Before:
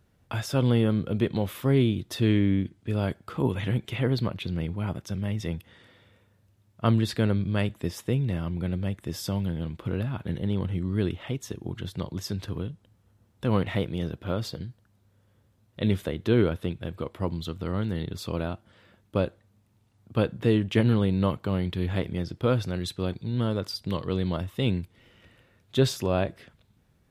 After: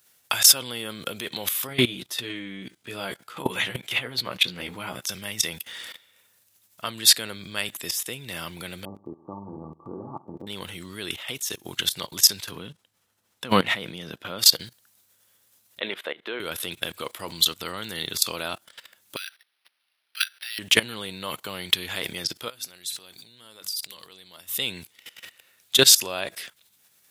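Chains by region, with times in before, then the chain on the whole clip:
1.67–5.02 high shelf 3700 Hz -10 dB + doubler 16 ms -4 dB
8.85–10.47 rippled Chebyshev low-pass 1200 Hz, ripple 9 dB + flutter echo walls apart 8.6 m, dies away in 0.46 s
12.51–14.39 LPF 3000 Hz 6 dB/oct + dynamic EQ 190 Hz, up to +7 dB, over -38 dBFS, Q 1.2
15.8–16.4 HPF 430 Hz + air absorption 500 m
19.16–20.59 steep high-pass 1400 Hz 72 dB/oct + high shelf 4200 Hz +7.5 dB + decimation joined by straight lines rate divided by 6×
22.48–24.58 high shelf 4800 Hz +9 dB + notches 50/100/150/200/250/300 Hz + compressor 12:1, threshold -36 dBFS
whole clip: level quantiser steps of 19 dB; differentiator; maximiser +30.5 dB; gain -1 dB

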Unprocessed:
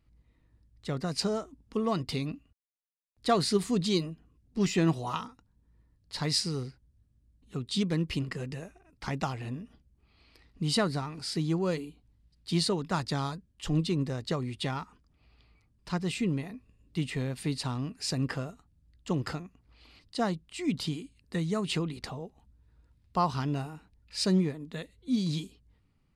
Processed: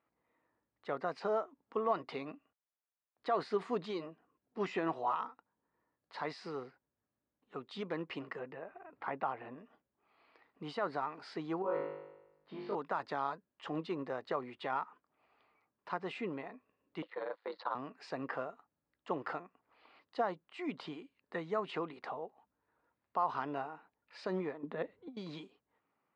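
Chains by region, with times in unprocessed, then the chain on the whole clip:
8.39–9.58 upward compressor, threshold -37 dBFS + air absorption 280 m
11.62–12.75 compressor 2.5:1, threshold -32 dBFS + tape spacing loss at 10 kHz 39 dB + flutter echo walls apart 3.4 m, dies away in 0.96 s
17.02–17.75 gate -38 dBFS, range -18 dB + ring modulator 54 Hz + speaker cabinet 480–4600 Hz, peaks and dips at 510 Hz +10 dB, 990 Hz +5 dB, 1400 Hz +4 dB, 2600 Hz -8 dB, 4100 Hz +7 dB
24.63–25.17 HPF 100 Hz + tilt -3 dB/oct + negative-ratio compressor -34 dBFS
whole clip: HPF 660 Hz 12 dB/oct; limiter -26 dBFS; LPF 1300 Hz 12 dB/oct; gain +5.5 dB

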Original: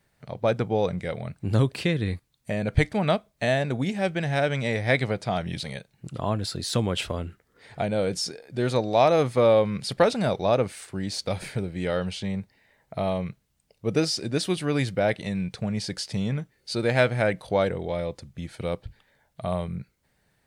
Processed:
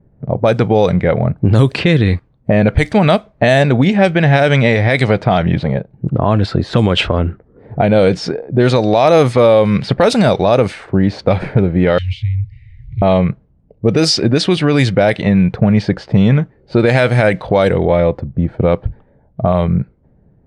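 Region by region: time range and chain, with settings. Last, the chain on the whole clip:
11.98–13.02 G.711 law mismatch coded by mu + Chebyshev band-stop 120–2100 Hz, order 5 + upward compressor, threshold -38 dBFS
whole clip: low-pass opened by the level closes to 350 Hz, open at -18 dBFS; compressor 2:1, threshold -31 dBFS; maximiser +22 dB; gain -1 dB

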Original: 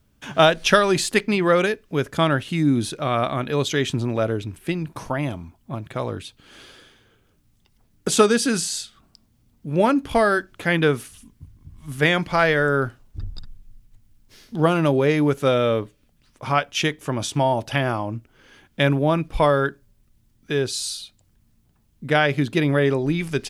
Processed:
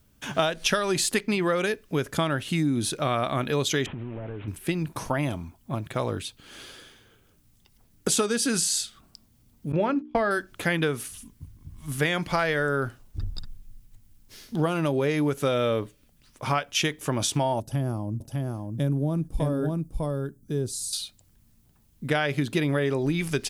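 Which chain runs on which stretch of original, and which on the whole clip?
3.86–4.48 delta modulation 16 kbps, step -38 dBFS + compressor, threshold -32 dBFS
9.72–10.31 LPF 3100 Hz + gate -28 dBFS, range -35 dB + notches 60/120/180/240/300/360/420 Hz
17.6–20.93 EQ curve 200 Hz 0 dB, 1100 Hz -16 dB, 2400 Hz -24 dB, 8300 Hz -6 dB + echo 0.602 s -3.5 dB
whole clip: high shelf 6100 Hz +7.5 dB; compressor 6:1, threshold -21 dBFS

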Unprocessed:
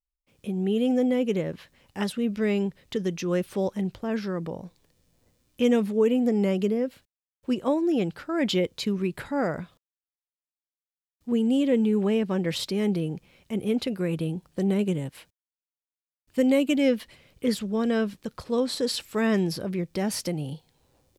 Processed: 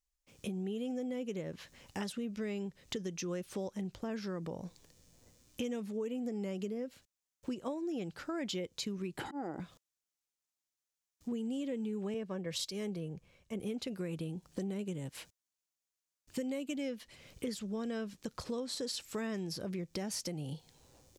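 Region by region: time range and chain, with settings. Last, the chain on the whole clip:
9.18–9.6 HPF 55 Hz + auto swell 0.788 s + small resonant body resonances 320/790/3000 Hz, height 17 dB, ringing for 25 ms
12.14–13.6 comb 1.8 ms, depth 32% + three-band expander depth 70%
whole clip: bell 6500 Hz +8 dB 0.86 oct; compressor 5:1, threshold -39 dBFS; gain +1.5 dB

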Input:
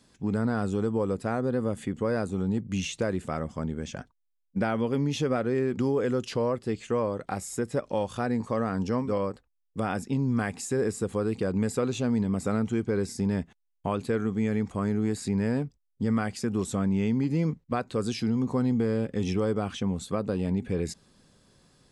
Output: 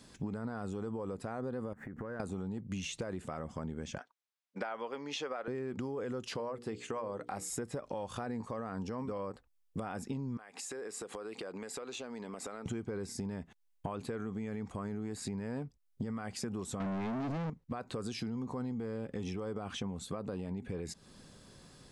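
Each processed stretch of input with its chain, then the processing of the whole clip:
1.73–2.2 median filter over 9 samples + resonant high shelf 2300 Hz -10.5 dB, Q 3 + compressor 10:1, threshold -41 dBFS
3.98–5.48 HPF 620 Hz + air absorption 74 m
6.29–7.5 HPF 130 Hz 6 dB/oct + notches 60/120/180/240/300/360/420/480 Hz
10.37–12.66 HPF 510 Hz + high shelf 6600 Hz -7 dB + compressor 20:1, threshold -42 dBFS
16.8–17.5 sample leveller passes 5 + air absorption 80 m
whole clip: dynamic EQ 910 Hz, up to +5 dB, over -41 dBFS, Q 0.87; limiter -21 dBFS; compressor, threshold -41 dBFS; gain +4.5 dB

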